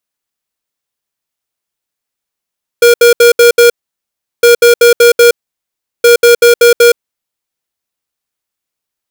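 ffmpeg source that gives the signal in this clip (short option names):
-f lavfi -i "aevalsrc='0.631*(2*lt(mod(475*t,1),0.5)-1)*clip(min(mod(mod(t,1.61),0.19),0.12-mod(mod(t,1.61),0.19))/0.005,0,1)*lt(mod(t,1.61),0.95)':d=4.83:s=44100"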